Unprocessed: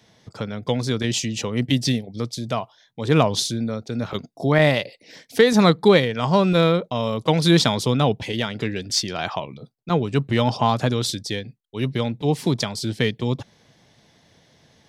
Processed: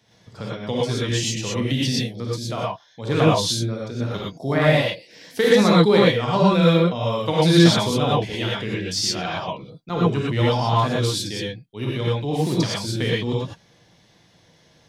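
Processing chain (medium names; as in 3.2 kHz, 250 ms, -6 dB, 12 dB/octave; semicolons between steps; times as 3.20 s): gated-style reverb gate 140 ms rising, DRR -5.5 dB; trim -6 dB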